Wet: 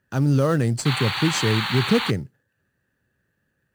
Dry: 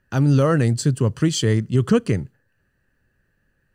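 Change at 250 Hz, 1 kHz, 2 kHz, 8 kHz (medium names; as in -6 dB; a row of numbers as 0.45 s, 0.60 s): -2.5 dB, +3.0 dB, +5.5 dB, -2.0 dB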